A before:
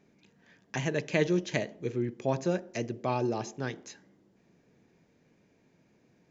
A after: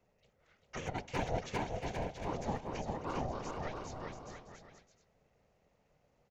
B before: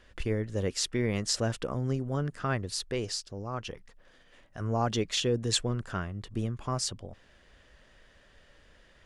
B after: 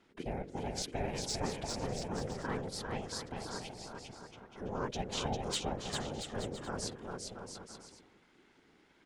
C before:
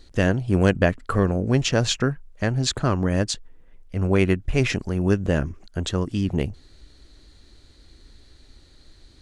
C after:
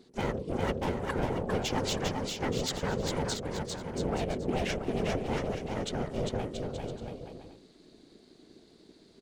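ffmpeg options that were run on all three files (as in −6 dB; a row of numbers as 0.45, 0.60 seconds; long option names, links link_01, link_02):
-filter_complex "[0:a]volume=18.5dB,asoftclip=hard,volume=-18.5dB,afftfilt=real='hypot(re,im)*cos(2*PI*random(0))':imag='hypot(re,im)*sin(2*PI*random(1))':win_size=512:overlap=0.75,aeval=exprs='val(0)*sin(2*PI*310*n/s)':channel_layout=same,asplit=2[link_01][link_02];[link_02]aecho=0:1:400|680|876|1013|1109:0.631|0.398|0.251|0.158|0.1[link_03];[link_01][link_03]amix=inputs=2:normalize=0"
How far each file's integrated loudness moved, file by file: −8.0, −7.5, −10.0 LU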